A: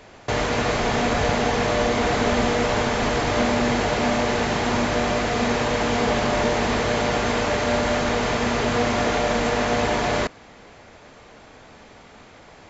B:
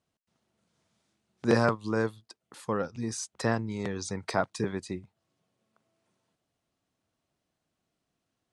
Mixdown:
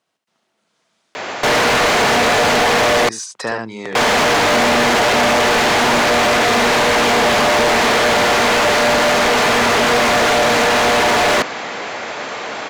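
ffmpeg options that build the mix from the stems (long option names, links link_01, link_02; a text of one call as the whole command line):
ffmpeg -i stem1.wav -i stem2.wav -filter_complex "[0:a]adelay=1150,volume=1.5dB,asplit=3[link_01][link_02][link_03];[link_01]atrim=end=3.09,asetpts=PTS-STARTPTS,afade=type=out:start_time=3.086:duration=0.004:curve=hsin[link_04];[link_02]atrim=start=3.09:end=3.95,asetpts=PTS-STARTPTS,volume=0[link_05];[link_03]atrim=start=3.95,asetpts=PTS-STARTPTS,afade=type=in:duration=0.004:curve=hsin[link_06];[link_04][link_05][link_06]concat=n=3:v=0:a=1[link_07];[1:a]volume=-10.5dB,asplit=2[link_08][link_09];[link_09]volume=-6dB,aecho=0:1:72:1[link_10];[link_07][link_08][link_10]amix=inputs=3:normalize=0,highpass=110,asplit=2[link_11][link_12];[link_12]highpass=frequency=720:poles=1,volume=29dB,asoftclip=type=tanh:threshold=-7.5dB[link_13];[link_11][link_13]amix=inputs=2:normalize=0,lowpass=frequency=5000:poles=1,volume=-6dB" out.wav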